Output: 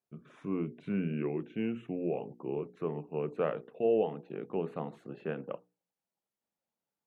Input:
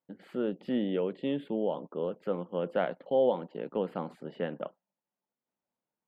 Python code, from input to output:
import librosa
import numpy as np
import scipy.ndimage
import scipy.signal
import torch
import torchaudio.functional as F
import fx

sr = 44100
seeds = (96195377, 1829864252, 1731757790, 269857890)

y = fx.speed_glide(x, sr, from_pct=77, to_pct=95)
y = fx.hum_notches(y, sr, base_hz=60, count=8)
y = y * 10.0 ** (-2.0 / 20.0)